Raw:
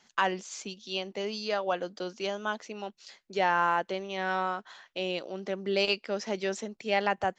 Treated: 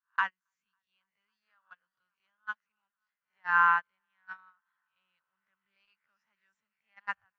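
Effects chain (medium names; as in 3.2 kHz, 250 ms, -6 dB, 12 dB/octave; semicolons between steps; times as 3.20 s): reverse spectral sustain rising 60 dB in 0.33 s; FFT filter 110 Hz 0 dB, 350 Hz -29 dB, 710 Hz -19 dB, 1 kHz +1 dB, 1.5 kHz +6 dB, 4.4 kHz -12 dB; multi-head delay 276 ms, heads first and second, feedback 71%, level -22.5 dB; gate -24 dBFS, range -41 dB; level rider gain up to 6 dB; trim -4 dB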